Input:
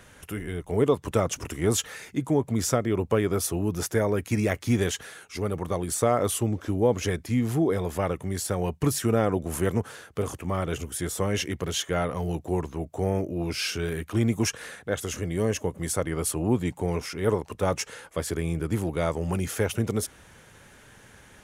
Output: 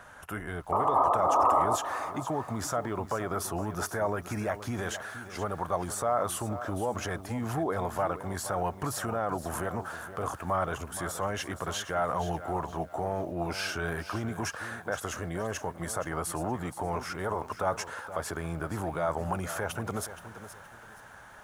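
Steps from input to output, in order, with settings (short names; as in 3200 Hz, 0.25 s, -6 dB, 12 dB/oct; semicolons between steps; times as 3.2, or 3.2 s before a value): painted sound noise, 0.72–1.76, 250–1300 Hz -26 dBFS; limiter -19.5 dBFS, peak gain reduction 12 dB; band shelf 990 Hz +12.5 dB; lo-fi delay 0.472 s, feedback 35%, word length 8-bit, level -12 dB; gain -5.5 dB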